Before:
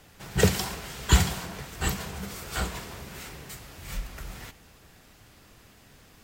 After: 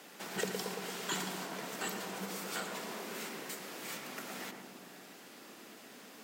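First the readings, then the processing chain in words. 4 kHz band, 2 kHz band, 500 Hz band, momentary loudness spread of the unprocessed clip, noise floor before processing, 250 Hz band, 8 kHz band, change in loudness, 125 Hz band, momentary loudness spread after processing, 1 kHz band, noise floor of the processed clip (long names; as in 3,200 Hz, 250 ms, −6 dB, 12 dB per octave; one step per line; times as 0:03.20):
−7.5 dB, −6.5 dB, −8.0 dB, 19 LU, −56 dBFS, −9.5 dB, −8.0 dB, −10.5 dB, −21.5 dB, 15 LU, −5.5 dB, −54 dBFS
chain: Butterworth high-pass 200 Hz 36 dB per octave
downward compressor 2.5 to 1, threshold −44 dBFS, peak gain reduction 18 dB
feedback echo with a low-pass in the loop 113 ms, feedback 76%, low-pass 1,100 Hz, level −3.5 dB
level +2.5 dB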